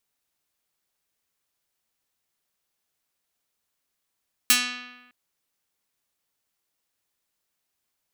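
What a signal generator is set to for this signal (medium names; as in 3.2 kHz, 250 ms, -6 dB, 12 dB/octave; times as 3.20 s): plucked string B3, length 0.61 s, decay 1.19 s, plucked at 0.48, medium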